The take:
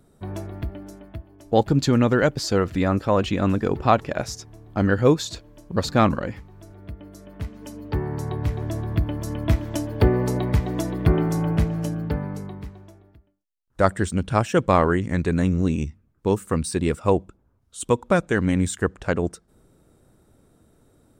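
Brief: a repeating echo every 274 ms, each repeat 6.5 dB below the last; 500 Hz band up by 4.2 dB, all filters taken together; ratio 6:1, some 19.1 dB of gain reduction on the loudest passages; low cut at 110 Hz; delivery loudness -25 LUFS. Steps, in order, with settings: high-pass 110 Hz; peaking EQ 500 Hz +5 dB; compression 6:1, threshold -30 dBFS; feedback delay 274 ms, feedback 47%, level -6.5 dB; trim +9.5 dB

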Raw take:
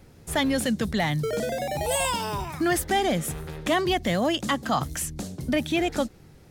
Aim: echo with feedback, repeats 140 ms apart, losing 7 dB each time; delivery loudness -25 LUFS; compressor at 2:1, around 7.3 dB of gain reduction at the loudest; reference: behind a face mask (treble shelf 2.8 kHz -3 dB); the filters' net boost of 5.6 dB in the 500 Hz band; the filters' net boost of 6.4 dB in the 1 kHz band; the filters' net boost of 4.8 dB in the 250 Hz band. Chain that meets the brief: peaking EQ 250 Hz +4.5 dB; peaking EQ 500 Hz +4 dB; peaking EQ 1 kHz +7 dB; compression 2:1, threshold -28 dBFS; treble shelf 2.8 kHz -3 dB; feedback delay 140 ms, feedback 45%, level -7 dB; trim +2.5 dB

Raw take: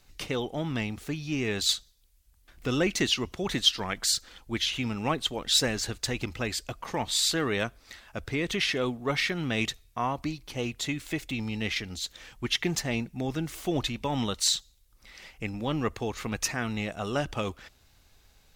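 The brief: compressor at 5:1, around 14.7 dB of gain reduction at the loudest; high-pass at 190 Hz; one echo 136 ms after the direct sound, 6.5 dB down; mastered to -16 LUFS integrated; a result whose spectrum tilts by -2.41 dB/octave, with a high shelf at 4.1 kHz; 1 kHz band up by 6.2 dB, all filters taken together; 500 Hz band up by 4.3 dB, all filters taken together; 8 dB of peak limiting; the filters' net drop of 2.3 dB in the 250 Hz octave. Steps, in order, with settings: high-pass 190 Hz; peaking EQ 250 Hz -3.5 dB; peaking EQ 500 Hz +5 dB; peaking EQ 1 kHz +6 dB; treble shelf 4.1 kHz +6 dB; compression 5:1, threshold -31 dBFS; peak limiter -24.5 dBFS; delay 136 ms -6.5 dB; trim +20 dB

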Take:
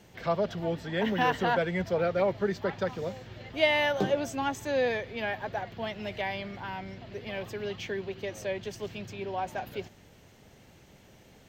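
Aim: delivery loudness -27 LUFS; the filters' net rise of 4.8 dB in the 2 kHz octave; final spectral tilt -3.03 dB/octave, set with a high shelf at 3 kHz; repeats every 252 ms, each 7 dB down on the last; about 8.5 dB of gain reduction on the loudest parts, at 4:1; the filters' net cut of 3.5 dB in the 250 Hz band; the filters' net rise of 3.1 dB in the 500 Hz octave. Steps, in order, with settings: peaking EQ 250 Hz -7 dB; peaking EQ 500 Hz +5 dB; peaking EQ 2 kHz +8.5 dB; treble shelf 3 kHz -9 dB; compression 4:1, threshold -27 dBFS; feedback delay 252 ms, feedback 45%, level -7 dB; trim +5 dB

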